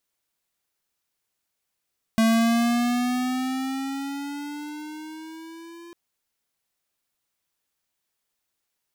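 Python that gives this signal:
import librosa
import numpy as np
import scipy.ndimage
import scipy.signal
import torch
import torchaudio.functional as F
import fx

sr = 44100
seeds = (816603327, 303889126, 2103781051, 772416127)

y = fx.riser_tone(sr, length_s=3.75, level_db=-18.0, wave='square', hz=223.0, rise_st=7.5, swell_db=-25.5)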